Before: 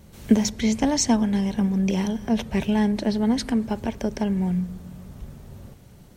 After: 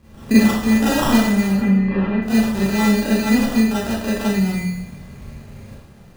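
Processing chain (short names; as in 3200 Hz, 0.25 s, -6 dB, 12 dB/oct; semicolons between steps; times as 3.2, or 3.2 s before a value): sample-and-hold 20×; 1.47–2.22 LPF 2600 Hz 24 dB/oct; Schroeder reverb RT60 0.7 s, combs from 28 ms, DRR -9 dB; gain -4.5 dB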